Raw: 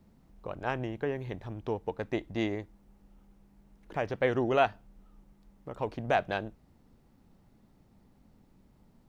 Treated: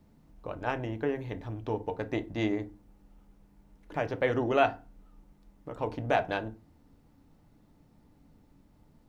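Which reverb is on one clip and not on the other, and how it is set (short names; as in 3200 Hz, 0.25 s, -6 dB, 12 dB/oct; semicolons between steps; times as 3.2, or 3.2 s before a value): FDN reverb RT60 0.31 s, low-frequency decay 1.45×, high-frequency decay 0.55×, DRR 7.5 dB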